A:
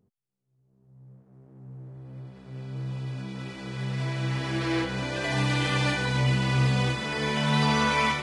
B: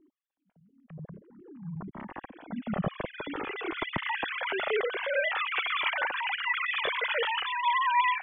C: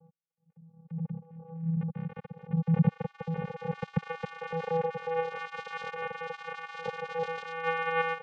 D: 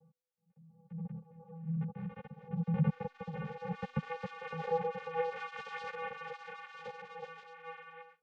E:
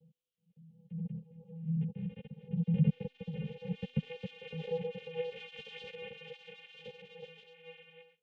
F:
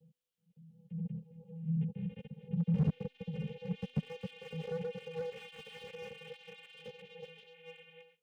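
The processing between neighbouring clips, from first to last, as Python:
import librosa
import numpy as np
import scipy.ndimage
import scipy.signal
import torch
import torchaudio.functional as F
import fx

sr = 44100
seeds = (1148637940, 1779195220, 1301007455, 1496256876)

y1 = fx.sine_speech(x, sr)
y1 = fx.rider(y1, sr, range_db=5, speed_s=0.5)
y1 = fx.comb_cascade(y1, sr, direction='falling', hz=0.51)
y1 = F.gain(torch.from_numpy(y1), 2.0).numpy()
y2 = fx.peak_eq(y1, sr, hz=2100.0, db=-12.5, octaves=0.51)
y2 = fx.vocoder(y2, sr, bands=4, carrier='square', carrier_hz=164.0)
y2 = scipy.signal.sosfilt(scipy.signal.butter(2, 3300.0, 'lowpass', fs=sr, output='sos'), y2)
y2 = F.gain(torch.from_numpy(y2), 1.0).numpy()
y3 = fx.fade_out_tail(y2, sr, length_s=2.46)
y3 = fx.comb_fb(y3, sr, f0_hz=250.0, decay_s=0.98, harmonics='all', damping=0.0, mix_pct=40)
y3 = fx.ensemble(y3, sr)
y3 = F.gain(torch.from_numpy(y3), 3.5).numpy()
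y4 = fx.curve_eq(y3, sr, hz=(420.0, 1200.0, 3000.0, 4700.0), db=(0, -29, 6, -8))
y4 = F.gain(torch.from_numpy(y4), 2.5).numpy()
y5 = fx.slew_limit(y4, sr, full_power_hz=9.3)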